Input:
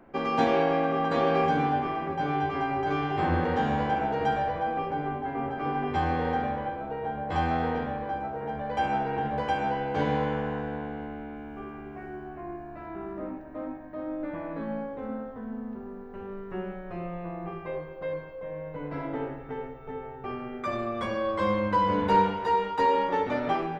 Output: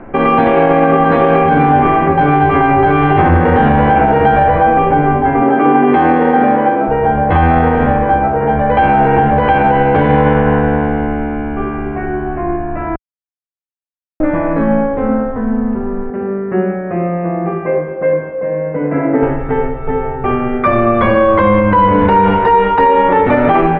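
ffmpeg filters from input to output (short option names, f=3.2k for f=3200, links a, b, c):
-filter_complex "[0:a]asettb=1/sr,asplit=3[a][b][c];[a]atrim=end=5.424[d];[b]atrim=start=5.42:end=6.88,asetpts=PTS-STARTPTS,afade=t=in:d=0.004:c=qsin,afade=t=out:st=1.456:d=0.004:c=qsin,highpass=f=260:t=q:w=1.7[e];[c]atrim=start=6.876[f];[d][e]acrossfade=d=0.004:c1=hsin:c2=qsin[g];[g][f]acrossfade=d=0.004:c1=qsin:c2=hsin,asettb=1/sr,asplit=3[h][i][j];[h]atrim=end=16.104[k];[i]atrim=start=16.1:end=19.23,asetpts=PTS-STARTPTS,afade=t=in:d=0.004:c=qsin,afade=t=out:st=3.126:d=0.004:c=qsin,highpass=180,equalizer=f=230:t=q:w=4:g=6,equalizer=f=960:t=q:w=4:g=-8,equalizer=f=1.4k:t=q:w=4:g=-4,lowpass=f=2.2k:w=0.5412,lowpass=f=2.2k:w=1.3066[l];[j]atrim=start=19.226[m];[k][l]acrossfade=d=0.004:c1=hsin:c2=qsin[n];[n][m]acrossfade=d=0.004:c1=qsin:c2=hsin,asplit=3[o][p][q];[o]atrim=end=12.96,asetpts=PTS-STARTPTS,afade=t=out:st=12.956:d=0.004:c=hsin[r];[p]atrim=start=12.96:end=14.2,asetpts=PTS-STARTPTS,volume=0[s];[q]atrim=start=14.2,asetpts=PTS-STARTPTS,afade=t=in:d=0.004:c=hsin[t];[r][s][t]concat=n=3:v=0:a=1,lowpass=f=2.6k:w=0.5412,lowpass=f=2.6k:w=1.3066,lowshelf=f=65:g=10,alimiter=level_in=21dB:limit=-1dB:release=50:level=0:latency=1,volume=-1dB"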